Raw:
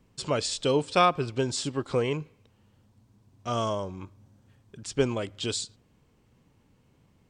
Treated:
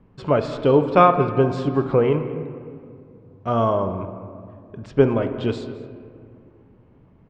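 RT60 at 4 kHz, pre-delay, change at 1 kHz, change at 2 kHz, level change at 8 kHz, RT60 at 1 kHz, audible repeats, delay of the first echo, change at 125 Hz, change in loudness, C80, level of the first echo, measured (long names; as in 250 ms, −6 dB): 1.2 s, 5 ms, +8.0 dB, +3.0 dB, below −15 dB, 2.1 s, 1, 216 ms, +9.5 dB, +8.0 dB, 9.5 dB, −19.5 dB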